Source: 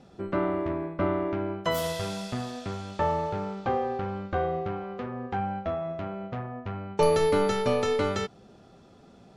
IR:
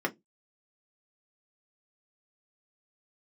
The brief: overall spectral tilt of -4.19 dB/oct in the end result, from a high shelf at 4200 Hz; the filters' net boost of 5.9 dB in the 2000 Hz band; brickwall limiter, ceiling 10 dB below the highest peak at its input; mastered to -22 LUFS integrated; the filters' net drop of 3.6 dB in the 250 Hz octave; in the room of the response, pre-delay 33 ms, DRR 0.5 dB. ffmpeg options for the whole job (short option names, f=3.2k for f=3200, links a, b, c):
-filter_complex "[0:a]equalizer=f=250:t=o:g=-5.5,equalizer=f=2k:t=o:g=8,highshelf=f=4.2k:g=-3.5,alimiter=limit=-21dB:level=0:latency=1,asplit=2[a][b];[1:a]atrim=start_sample=2205,adelay=33[c];[b][c]afir=irnorm=-1:irlink=0,volume=-8.5dB[d];[a][d]amix=inputs=2:normalize=0,volume=8dB"